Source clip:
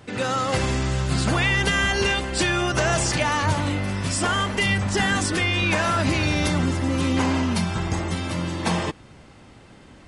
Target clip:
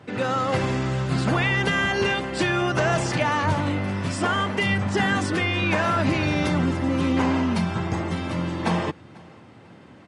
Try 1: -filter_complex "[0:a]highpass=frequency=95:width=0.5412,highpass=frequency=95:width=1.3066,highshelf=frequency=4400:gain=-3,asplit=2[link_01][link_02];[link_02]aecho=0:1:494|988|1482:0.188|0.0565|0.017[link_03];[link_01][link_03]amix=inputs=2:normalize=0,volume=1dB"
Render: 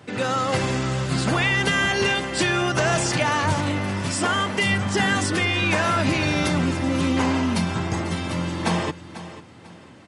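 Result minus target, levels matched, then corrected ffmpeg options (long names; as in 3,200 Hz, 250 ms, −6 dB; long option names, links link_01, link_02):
echo-to-direct +10.5 dB; 8,000 Hz band +7.0 dB
-filter_complex "[0:a]highpass=frequency=95:width=0.5412,highpass=frequency=95:width=1.3066,highshelf=frequency=4400:gain=-14,asplit=2[link_01][link_02];[link_02]aecho=0:1:494|988:0.0562|0.0169[link_03];[link_01][link_03]amix=inputs=2:normalize=0,volume=1dB"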